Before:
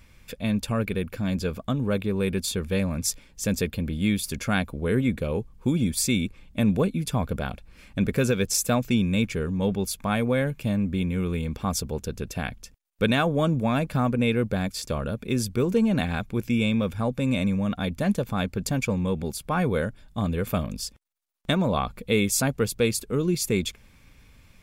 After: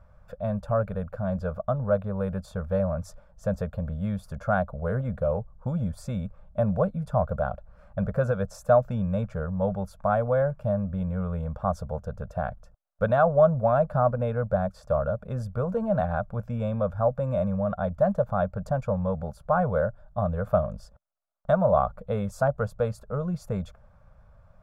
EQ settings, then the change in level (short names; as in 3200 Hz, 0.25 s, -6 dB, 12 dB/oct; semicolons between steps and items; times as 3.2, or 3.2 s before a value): EQ curve 110 Hz 0 dB, 190 Hz -3 dB, 330 Hz -25 dB, 600 Hz +11 dB, 930 Hz 0 dB, 1400 Hz +2 dB, 2200 Hz -23 dB, 5500 Hz -22 dB, 14000 Hz -27 dB; 0.0 dB